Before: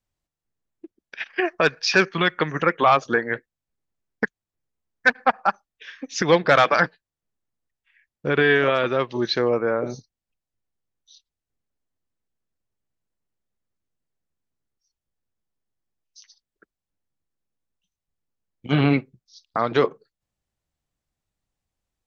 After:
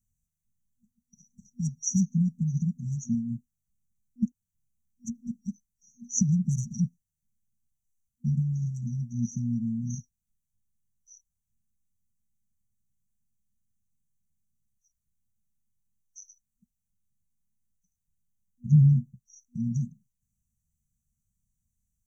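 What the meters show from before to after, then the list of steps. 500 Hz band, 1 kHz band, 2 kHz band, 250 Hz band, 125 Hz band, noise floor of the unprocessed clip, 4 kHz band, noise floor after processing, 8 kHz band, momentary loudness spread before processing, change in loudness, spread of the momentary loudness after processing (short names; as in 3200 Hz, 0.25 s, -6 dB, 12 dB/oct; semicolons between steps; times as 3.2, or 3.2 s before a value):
under -40 dB, under -40 dB, under -40 dB, -2.0 dB, +5.0 dB, under -85 dBFS, under -20 dB, -84 dBFS, n/a, 13 LU, -7.0 dB, 16 LU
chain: FFT band-reject 240–5700 Hz; gain +5 dB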